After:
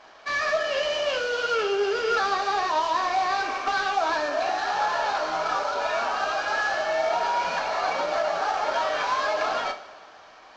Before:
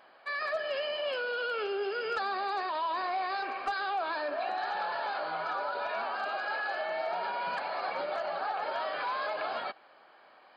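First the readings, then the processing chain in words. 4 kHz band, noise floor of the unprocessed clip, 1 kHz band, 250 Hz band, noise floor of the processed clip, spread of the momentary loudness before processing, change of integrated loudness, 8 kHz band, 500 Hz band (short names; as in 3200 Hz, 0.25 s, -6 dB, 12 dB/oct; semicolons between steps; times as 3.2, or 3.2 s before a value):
+9.0 dB, -58 dBFS, +8.0 dB, +8.0 dB, -49 dBFS, 2 LU, +8.0 dB, n/a, +8.0 dB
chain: CVSD 32 kbps; two-slope reverb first 0.33 s, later 2.3 s, from -18 dB, DRR 3 dB; gain +6.5 dB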